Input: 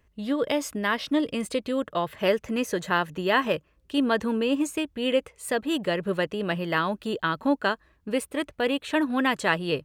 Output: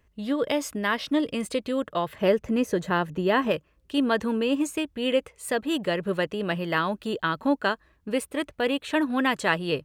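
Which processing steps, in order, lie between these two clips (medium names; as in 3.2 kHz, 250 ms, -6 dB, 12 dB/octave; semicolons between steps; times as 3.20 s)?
2.18–3.51 s: tilt shelf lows +4.5 dB, about 770 Hz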